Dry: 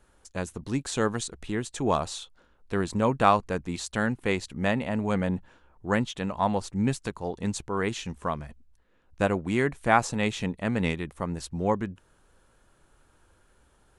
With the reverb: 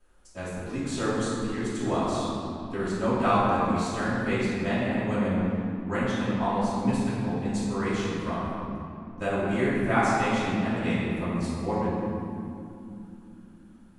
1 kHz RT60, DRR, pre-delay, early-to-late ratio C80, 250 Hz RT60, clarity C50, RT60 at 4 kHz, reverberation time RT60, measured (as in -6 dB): 2.5 s, -14.0 dB, 3 ms, -1.0 dB, 5.0 s, -3.0 dB, 1.6 s, 2.9 s